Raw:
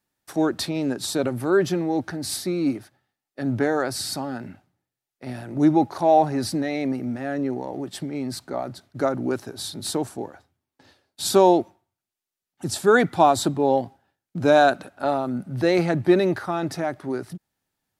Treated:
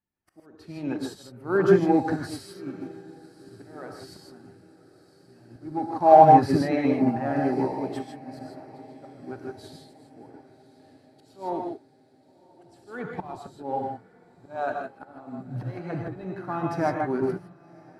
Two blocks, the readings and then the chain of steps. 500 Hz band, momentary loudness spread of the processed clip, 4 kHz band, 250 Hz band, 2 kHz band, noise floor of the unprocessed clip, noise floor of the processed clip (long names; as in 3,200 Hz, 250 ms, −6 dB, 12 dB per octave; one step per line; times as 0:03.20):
−4.0 dB, 22 LU, −15.5 dB, −4.5 dB, −8.5 dB, below −85 dBFS, −58 dBFS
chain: spectral magnitudes quantised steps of 15 dB
notch filter 3,600 Hz, Q 8.3
in parallel at −5 dB: asymmetric clip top −11.5 dBFS
on the sum: bass and treble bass +5 dB, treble −11 dB
volume swells 751 ms
on a send: feedback delay with all-pass diffusion 1,085 ms, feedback 59%, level −14 dB
on the sum: reverb whose tail is shaped and stops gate 180 ms rising, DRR 0.5 dB
dynamic equaliser 1,000 Hz, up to +6 dB, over −38 dBFS, Q 1.4
expander for the loud parts 1.5 to 1, over −36 dBFS
level −1 dB